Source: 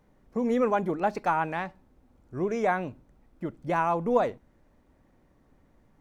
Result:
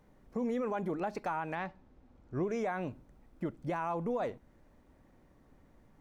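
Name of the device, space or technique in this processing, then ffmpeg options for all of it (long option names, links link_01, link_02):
stacked limiters: -filter_complex "[0:a]asettb=1/sr,asplit=3[link_01][link_02][link_03];[link_01]atrim=end=1.554[link_04];[link_02]atrim=start=1.55:end=2.43,asetpts=PTS-STARTPTS,afade=type=in:duration=0.004:curve=qsin,afade=type=out:start_time=0.876:duration=0.004:curve=qsin,lowpass=5500[link_05];[link_03]atrim=start=2.426[link_06];[link_04][link_05]acrossfade=duration=0.004:curve1=hsin:curve2=qsin[link_07];[link_07][link_06]acrossfade=duration=0.004:curve1=qsin:curve2=hsin,alimiter=limit=-18dB:level=0:latency=1:release=190,alimiter=limit=-21.5dB:level=0:latency=1:release=65,alimiter=level_in=2dB:limit=-24dB:level=0:latency=1:release=284,volume=-2dB"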